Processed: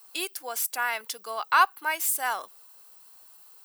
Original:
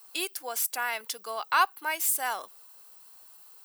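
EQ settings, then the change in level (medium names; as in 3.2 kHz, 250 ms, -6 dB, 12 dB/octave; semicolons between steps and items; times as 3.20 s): dynamic bell 1.3 kHz, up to +4 dB, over -36 dBFS, Q 0.98; 0.0 dB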